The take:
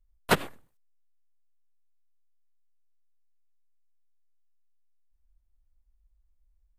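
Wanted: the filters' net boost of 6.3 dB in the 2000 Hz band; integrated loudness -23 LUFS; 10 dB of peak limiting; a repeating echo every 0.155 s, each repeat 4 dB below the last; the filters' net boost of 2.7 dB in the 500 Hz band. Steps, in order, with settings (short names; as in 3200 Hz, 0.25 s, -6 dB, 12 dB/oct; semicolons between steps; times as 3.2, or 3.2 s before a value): bell 500 Hz +3 dB; bell 2000 Hz +8 dB; limiter -12.5 dBFS; feedback echo 0.155 s, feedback 63%, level -4 dB; gain +9 dB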